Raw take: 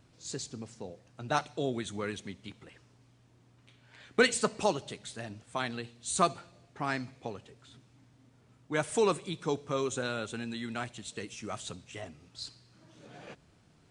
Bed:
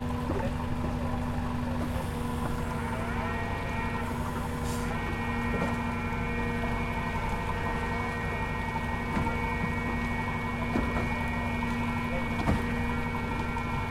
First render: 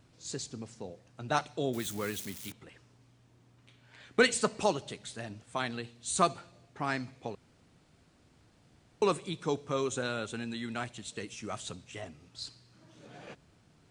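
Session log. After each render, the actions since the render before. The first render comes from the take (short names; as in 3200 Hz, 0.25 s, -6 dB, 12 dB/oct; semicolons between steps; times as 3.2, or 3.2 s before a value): 1.73–2.52 switching spikes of -33.5 dBFS; 7.35–9.02 room tone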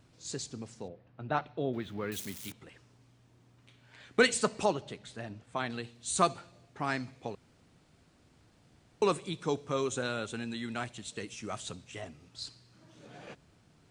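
0.88–2.12 air absorption 360 m; 4.65–5.7 high shelf 4800 Hz -11.5 dB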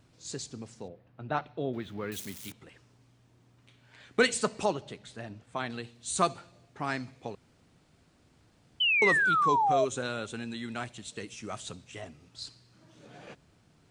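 8.8–9.85 painted sound fall 610–3100 Hz -25 dBFS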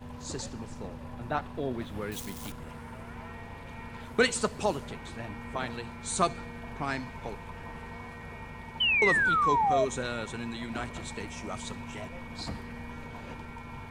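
add bed -11.5 dB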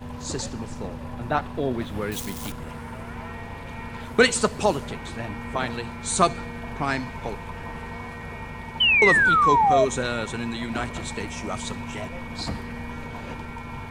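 gain +7 dB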